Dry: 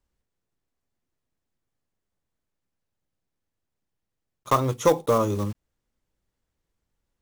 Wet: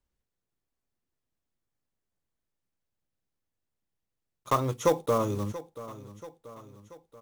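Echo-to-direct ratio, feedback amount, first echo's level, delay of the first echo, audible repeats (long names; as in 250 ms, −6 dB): −14.5 dB, 54%, −16.0 dB, 683 ms, 3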